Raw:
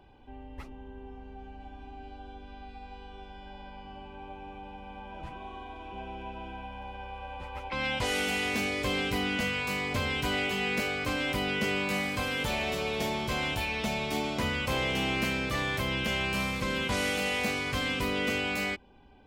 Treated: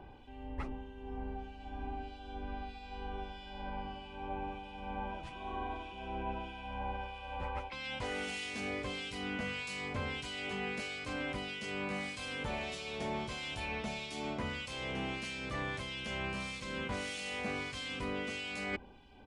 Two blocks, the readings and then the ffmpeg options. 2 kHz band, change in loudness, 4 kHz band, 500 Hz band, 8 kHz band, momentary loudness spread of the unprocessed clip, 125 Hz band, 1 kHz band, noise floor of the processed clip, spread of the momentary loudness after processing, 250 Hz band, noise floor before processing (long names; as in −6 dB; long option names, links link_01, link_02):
−9.0 dB, −9.5 dB, −9.0 dB, −8.0 dB, −9.5 dB, 18 LU, −7.5 dB, −5.5 dB, −49 dBFS, 7 LU, −8.0 dB, −47 dBFS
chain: -filter_complex "[0:a]aresample=22050,aresample=44100,areverse,acompressor=threshold=-39dB:ratio=10,areverse,acrossover=split=2400[link_01][link_02];[link_01]aeval=exprs='val(0)*(1-0.7/2+0.7/2*cos(2*PI*1.6*n/s))':channel_layout=same[link_03];[link_02]aeval=exprs='val(0)*(1-0.7/2-0.7/2*cos(2*PI*1.6*n/s))':channel_layout=same[link_04];[link_03][link_04]amix=inputs=2:normalize=0,volume=6dB"